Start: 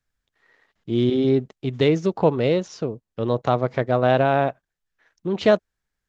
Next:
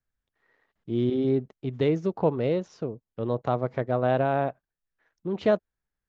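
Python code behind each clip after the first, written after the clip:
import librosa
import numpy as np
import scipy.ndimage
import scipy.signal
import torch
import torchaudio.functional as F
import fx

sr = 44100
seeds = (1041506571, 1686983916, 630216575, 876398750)

y = fx.high_shelf(x, sr, hz=2500.0, db=-10.0)
y = F.gain(torch.from_numpy(y), -5.0).numpy()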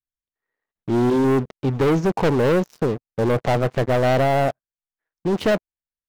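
y = fx.rider(x, sr, range_db=3, speed_s=2.0)
y = fx.leveller(y, sr, passes=5)
y = F.gain(torch.from_numpy(y), -4.0).numpy()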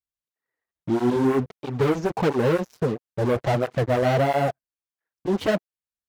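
y = fx.flanger_cancel(x, sr, hz=1.5, depth_ms=7.3)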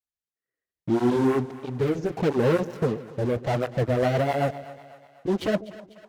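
y = fx.rotary_switch(x, sr, hz=0.65, then_hz=8.0, switch_at_s=3.28)
y = fx.echo_split(y, sr, split_hz=650.0, low_ms=141, high_ms=248, feedback_pct=52, wet_db=-16.0)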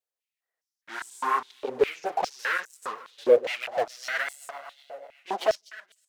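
y = fx.filter_held_highpass(x, sr, hz=4.9, low_hz=500.0, high_hz=8000.0)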